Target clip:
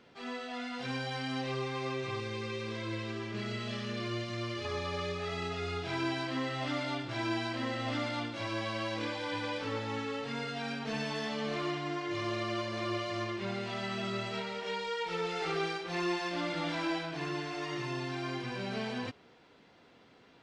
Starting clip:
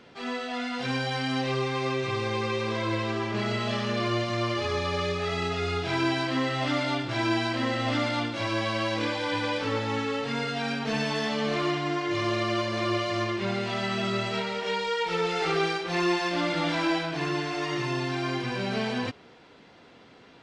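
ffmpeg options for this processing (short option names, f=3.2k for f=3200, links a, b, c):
-filter_complex "[0:a]asettb=1/sr,asplit=3[a][b][c];[a]atrim=end=2.204[d];[b]atrim=start=2.2:end=4.65,asetpts=PTS-STARTPTS,afade=t=in:d=0.004:c=qsin,afade=t=out:st=2.446:d=0.004:c=qsin,equalizer=f=840:w=1.4:g=-9[e];[c]atrim=start=4.646[f];[d][e]acrossfade=d=0.004:c1=hsin:c2=qsin[g];[g][f]acrossfade=d=0.004:c1=qsin:c2=hsin,volume=-7.5dB"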